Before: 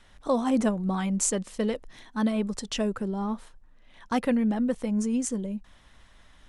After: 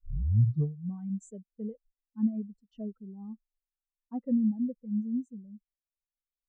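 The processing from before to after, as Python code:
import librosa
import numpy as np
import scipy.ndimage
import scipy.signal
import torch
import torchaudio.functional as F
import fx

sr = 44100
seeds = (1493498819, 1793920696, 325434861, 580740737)

y = fx.tape_start_head(x, sr, length_s=0.92)
y = fx.spectral_expand(y, sr, expansion=2.5)
y = y * librosa.db_to_amplitude(-7.0)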